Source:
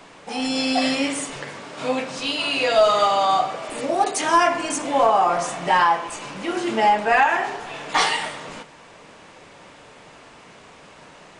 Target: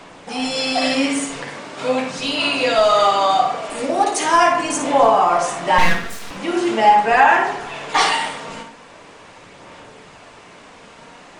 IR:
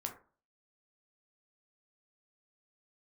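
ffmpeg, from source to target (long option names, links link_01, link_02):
-filter_complex "[0:a]asettb=1/sr,asplit=3[link_01][link_02][link_03];[link_01]atrim=end=5.784[link_04];[link_02]atrim=start=5.78:end=6.31,asetpts=PTS-STARTPTS,afade=type=in:duration=0.004:curve=qsin,afade=type=out:start_time=0.526:duration=0.004:curve=qsin,aeval=exprs='abs(val(0))':channel_layout=same[link_05];[link_03]atrim=start=6.306[link_06];[link_04][link_05]acrossfade=duration=0.004:curve1=hsin:curve2=qsin[link_07];[link_07][link_06]acrossfade=duration=0.004:curve1=qsin:curve2=hsin,aphaser=in_gain=1:out_gain=1:delay=4.4:decay=0.28:speed=0.41:type=sinusoidal,asplit=2[link_08][link_09];[1:a]atrim=start_sample=2205,adelay=55[link_10];[link_09][link_10]afir=irnorm=-1:irlink=0,volume=-5dB[link_11];[link_08][link_11]amix=inputs=2:normalize=0,volume=2dB"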